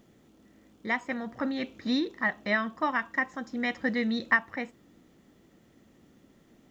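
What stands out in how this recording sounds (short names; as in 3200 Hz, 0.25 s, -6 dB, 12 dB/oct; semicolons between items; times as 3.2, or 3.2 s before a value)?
a quantiser's noise floor 12-bit, dither none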